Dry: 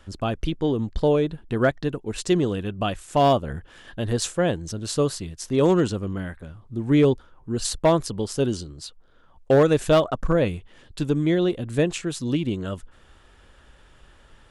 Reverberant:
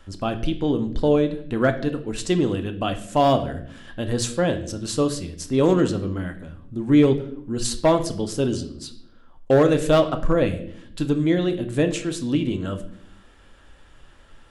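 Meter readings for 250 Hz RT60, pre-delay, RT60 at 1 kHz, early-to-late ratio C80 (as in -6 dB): 1.1 s, 3 ms, 0.50 s, 15.5 dB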